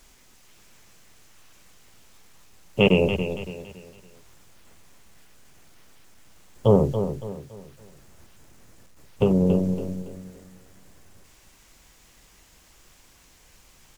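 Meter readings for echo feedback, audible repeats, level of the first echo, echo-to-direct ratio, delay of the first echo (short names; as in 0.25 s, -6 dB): 36%, 3, -9.0 dB, -8.5 dB, 0.281 s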